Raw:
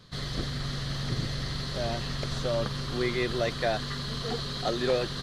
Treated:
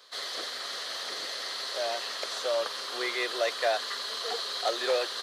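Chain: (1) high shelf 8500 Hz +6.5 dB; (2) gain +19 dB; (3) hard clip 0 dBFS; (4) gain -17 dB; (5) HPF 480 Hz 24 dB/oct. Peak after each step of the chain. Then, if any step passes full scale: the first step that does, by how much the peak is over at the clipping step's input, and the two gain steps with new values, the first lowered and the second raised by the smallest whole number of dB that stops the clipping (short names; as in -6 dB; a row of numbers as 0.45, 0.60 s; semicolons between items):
-13.5, +5.5, 0.0, -17.0, -15.0 dBFS; step 2, 5.5 dB; step 2 +13 dB, step 4 -11 dB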